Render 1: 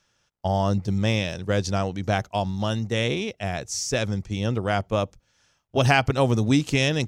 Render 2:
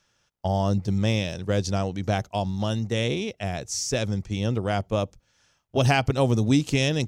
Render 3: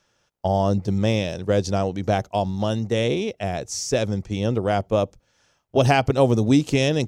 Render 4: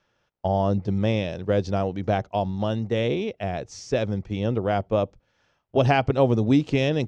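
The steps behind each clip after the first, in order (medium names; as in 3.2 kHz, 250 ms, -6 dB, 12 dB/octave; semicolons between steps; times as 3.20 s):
dynamic bell 1.5 kHz, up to -5 dB, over -36 dBFS, Q 0.73
peaking EQ 500 Hz +6 dB 2.2 oct
low-pass 3.5 kHz 12 dB/octave; trim -2 dB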